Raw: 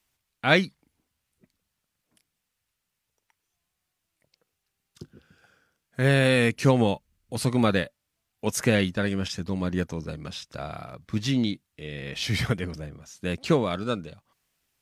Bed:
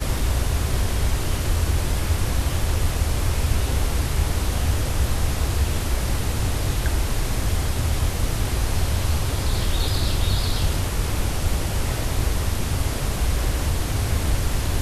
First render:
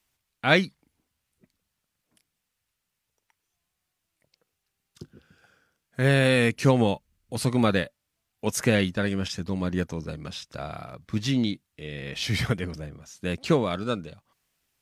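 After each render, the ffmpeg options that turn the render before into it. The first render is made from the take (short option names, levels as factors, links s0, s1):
-af anull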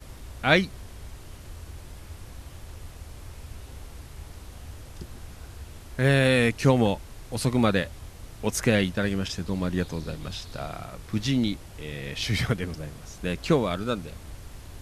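-filter_complex "[1:a]volume=0.1[s0];[0:a][s0]amix=inputs=2:normalize=0"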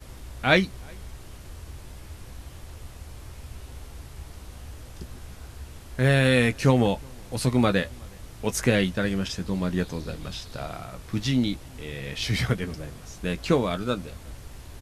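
-filter_complex "[0:a]asplit=2[s0][s1];[s1]adelay=16,volume=0.299[s2];[s0][s2]amix=inputs=2:normalize=0,asplit=2[s3][s4];[s4]adelay=367.3,volume=0.0355,highshelf=f=4000:g=-8.27[s5];[s3][s5]amix=inputs=2:normalize=0"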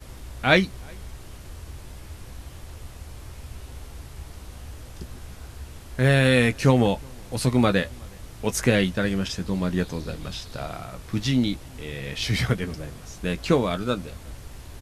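-af "volume=1.19"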